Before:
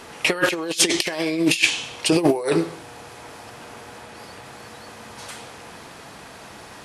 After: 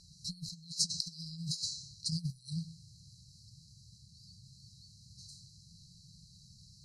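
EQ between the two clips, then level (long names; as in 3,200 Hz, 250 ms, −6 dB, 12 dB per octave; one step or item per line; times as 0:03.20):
linear-phase brick-wall band-stop 190–3,900 Hz
low-pass filter 5,100 Hz 12 dB per octave
−6.5 dB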